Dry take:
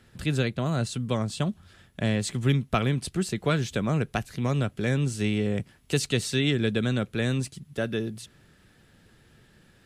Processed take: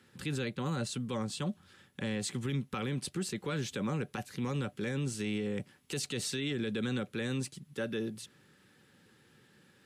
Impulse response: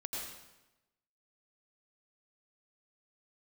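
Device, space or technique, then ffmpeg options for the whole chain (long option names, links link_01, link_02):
PA system with an anti-feedback notch: -af "highpass=150,asuperstop=centerf=660:order=20:qfactor=5.2,alimiter=limit=-22.5dB:level=0:latency=1:release=34,volume=-3.5dB"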